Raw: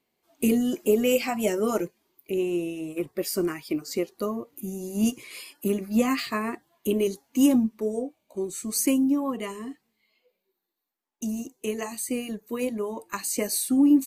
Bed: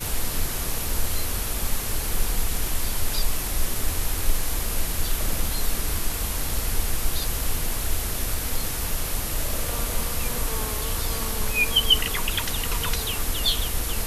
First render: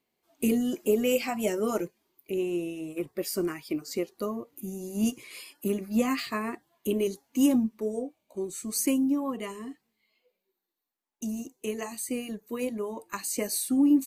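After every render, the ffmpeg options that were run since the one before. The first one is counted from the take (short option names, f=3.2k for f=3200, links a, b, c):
-af "volume=-3dB"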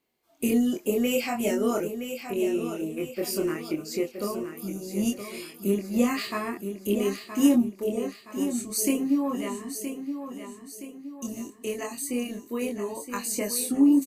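-filter_complex "[0:a]asplit=2[a][b];[b]adelay=25,volume=-2.5dB[c];[a][c]amix=inputs=2:normalize=0,aecho=1:1:970|1940|2910|3880|4850:0.355|0.156|0.0687|0.0302|0.0133"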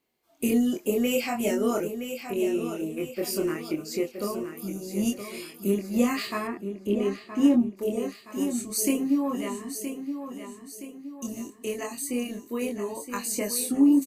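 -filter_complex "[0:a]asettb=1/sr,asplit=3[a][b][c];[a]atrim=end=6.474[d];[b]atrim=start=6.47:end=7.77,asetpts=PTS-STARTPTS,afade=t=in:d=0.004:c=qsin,afade=t=out:st=1.296:d=0.004:c=qsin,aemphasis=mode=reproduction:type=75kf[e];[c]atrim=start=7.766[f];[d][e]acrossfade=d=0.004:c1=hsin:c2=qsin[g];[g][f]acrossfade=d=0.004:c1=qsin:c2=hsin"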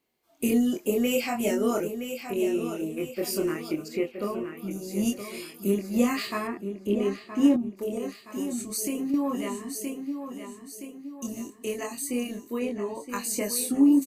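-filter_complex "[0:a]asettb=1/sr,asplit=3[a][b][c];[a]atrim=end=3.884[d];[b]atrim=start=3.88:end=4.71,asetpts=PTS-STARTPTS,afade=t=in:d=0.004:c=qsin,afade=t=out:st=0.826:d=0.004:c=qsin,highshelf=f=3.9k:t=q:w=1.5:g=-10[e];[c]atrim=start=4.706[f];[d][e]acrossfade=d=0.004:c1=hsin:c2=qsin[g];[g][f]acrossfade=d=0.004:c1=qsin:c2=hsin,asettb=1/sr,asplit=3[h][i][j];[h]atrim=end=7.564[k];[i]atrim=start=7.56:end=9.14,asetpts=PTS-STARTPTS,afade=t=in:d=0.004:c=qsin,afade=t=out:st=1.576:d=0.004:c=qsin,acompressor=threshold=-27dB:ratio=3:attack=3.2:release=140:knee=1:detection=peak[l];[j]atrim=start=9.136[m];[k][l]acrossfade=d=0.004:c1=hsin:c2=qsin[n];[n][m]acrossfade=d=0.004:c1=qsin:c2=hsin,asettb=1/sr,asplit=3[o][p][q];[o]atrim=end=12.594[r];[p]atrim=start=12.59:end=13.09,asetpts=PTS-STARTPTS,afade=t=in:d=0.004:c=qsin,afade=t=out:st=0.496:d=0.004:c=qsin,aemphasis=mode=reproduction:type=50fm[s];[q]atrim=start=13.086[t];[r][s]acrossfade=d=0.004:c1=hsin:c2=qsin[u];[u][t]acrossfade=d=0.004:c1=qsin:c2=hsin"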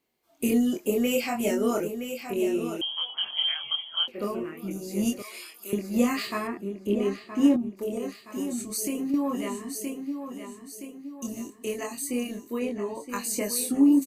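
-filter_complex "[0:a]asettb=1/sr,asplit=3[a][b][c];[a]atrim=end=2.814[d];[b]atrim=start=2.81:end=4.08,asetpts=PTS-STARTPTS,afade=t=in:d=0.004:c=qsin,afade=t=out:st=1.266:d=0.004:c=qsin,lowpass=f=3k:t=q:w=0.5098,lowpass=f=3k:t=q:w=0.6013,lowpass=f=3k:t=q:w=0.9,lowpass=f=3k:t=q:w=2.563,afreqshift=-3500[e];[c]atrim=start=4.076[f];[d][e]acrossfade=d=0.004:c1=hsin:c2=qsin[g];[g][f]acrossfade=d=0.004:c1=qsin:c2=hsin,asettb=1/sr,asplit=3[h][i][j];[h]atrim=end=5.224[k];[i]atrim=start=5.22:end=5.73,asetpts=PTS-STARTPTS,afade=t=in:d=0.004:c=qsin,afade=t=out:st=0.506:d=0.004:c=qsin,highpass=870[l];[j]atrim=start=5.726[m];[k][l]acrossfade=d=0.004:c1=hsin:c2=qsin[n];[n][m]acrossfade=d=0.004:c1=qsin:c2=hsin"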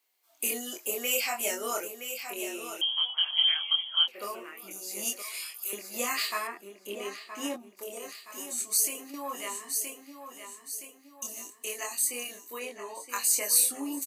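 -af "highpass=770,highshelf=f=4.4k:g=8"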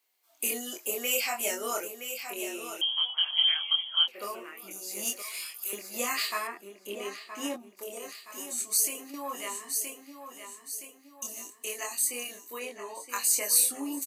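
-filter_complex "[0:a]asettb=1/sr,asplit=3[a][b][c];[a]atrim=end=4.914[d];[b]atrim=start=4.91:end=5.9,asetpts=PTS-STARTPTS,afade=t=in:d=0.004:c=qsin,afade=t=out:st=0.986:d=0.004:c=qsin,acrusher=bits=5:mode=log:mix=0:aa=0.000001[e];[c]atrim=start=5.896[f];[d][e]acrossfade=d=0.004:c1=hsin:c2=qsin[g];[g][f]acrossfade=d=0.004:c1=qsin:c2=hsin"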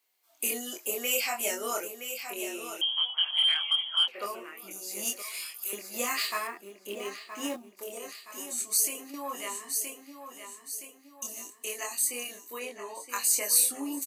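-filter_complex "[0:a]asettb=1/sr,asplit=3[a][b][c];[a]atrim=end=3.344[d];[b]atrim=start=3.34:end=4.26,asetpts=PTS-STARTPTS,afade=t=in:d=0.004:c=qsin,afade=t=out:st=0.916:d=0.004:c=qsin,asplit=2[e][f];[f]highpass=f=720:p=1,volume=11dB,asoftclip=type=tanh:threshold=-12dB[g];[e][g]amix=inputs=2:normalize=0,lowpass=f=2.3k:p=1,volume=-6dB[h];[c]atrim=start=4.256[i];[d][h]acrossfade=d=0.004:c1=hsin:c2=qsin[j];[j][i]acrossfade=d=0.004:c1=qsin:c2=hsin,asettb=1/sr,asplit=3[k][l][m];[k]atrim=end=5.944[n];[l]atrim=start=5.94:end=7.97,asetpts=PTS-STARTPTS,afade=t=in:d=0.004:c=qsin,afade=t=out:st=2.026:d=0.004:c=qsin,acrusher=bits=5:mode=log:mix=0:aa=0.000001[o];[m]atrim=start=7.966[p];[n][o]acrossfade=d=0.004:c1=hsin:c2=qsin[q];[q][p]acrossfade=d=0.004:c1=qsin:c2=hsin"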